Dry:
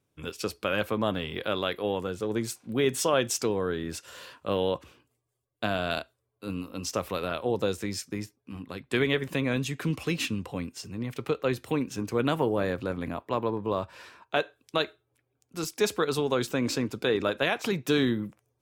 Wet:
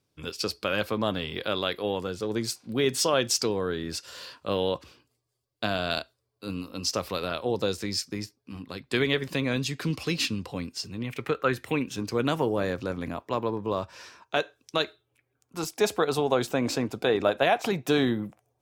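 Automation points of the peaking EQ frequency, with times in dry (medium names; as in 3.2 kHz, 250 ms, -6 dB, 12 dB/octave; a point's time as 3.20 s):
peaking EQ +10.5 dB 0.58 oct
10.81 s 4.7 kHz
11.44 s 1.3 kHz
12.19 s 5.7 kHz
14.83 s 5.7 kHz
15.68 s 720 Hz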